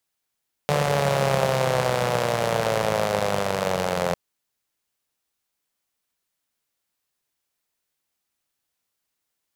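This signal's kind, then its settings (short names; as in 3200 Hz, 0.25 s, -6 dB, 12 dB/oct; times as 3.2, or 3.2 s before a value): four-cylinder engine model, changing speed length 3.45 s, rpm 4400, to 2600, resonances 160/530 Hz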